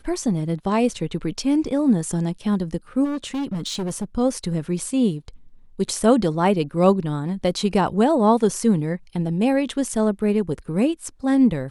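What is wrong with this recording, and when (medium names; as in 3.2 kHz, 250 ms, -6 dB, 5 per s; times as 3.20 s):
3.04–4.04 s: clipped -22.5 dBFS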